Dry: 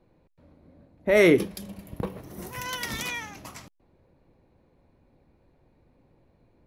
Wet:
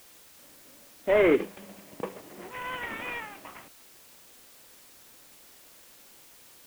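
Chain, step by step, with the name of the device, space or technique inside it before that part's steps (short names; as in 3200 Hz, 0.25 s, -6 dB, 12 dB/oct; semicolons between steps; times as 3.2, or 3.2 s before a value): army field radio (BPF 320–3100 Hz; CVSD 16 kbps; white noise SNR 21 dB)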